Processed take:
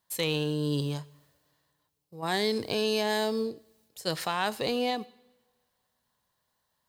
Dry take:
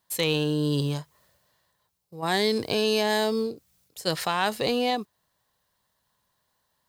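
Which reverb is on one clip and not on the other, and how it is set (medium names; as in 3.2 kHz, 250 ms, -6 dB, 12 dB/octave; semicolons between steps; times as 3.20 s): two-slope reverb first 0.87 s, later 3.1 s, from -26 dB, DRR 18.5 dB; trim -4 dB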